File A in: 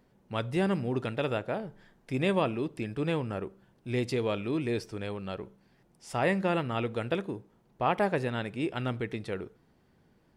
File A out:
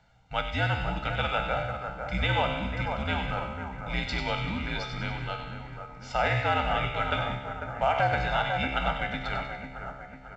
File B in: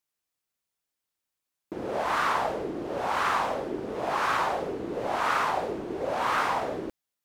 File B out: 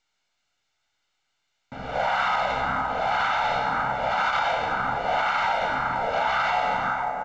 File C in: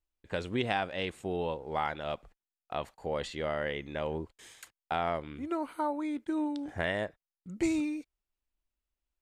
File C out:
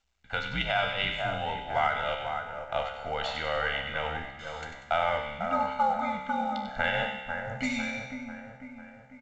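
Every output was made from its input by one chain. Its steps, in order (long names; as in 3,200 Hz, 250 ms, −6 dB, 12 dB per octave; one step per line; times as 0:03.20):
tuned comb filter 67 Hz, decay 1.1 s, harmonics all, mix 80%
frequency shifter −75 Hz
flat-topped bell 1,800 Hz +9.5 dB 2.8 octaves
comb filter 1.4 ms, depth 94%
echo with a time of its own for lows and highs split 1,900 Hz, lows 497 ms, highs 96 ms, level −7 dB
brickwall limiter −21.5 dBFS
level +6.5 dB
mu-law 128 kbit/s 16,000 Hz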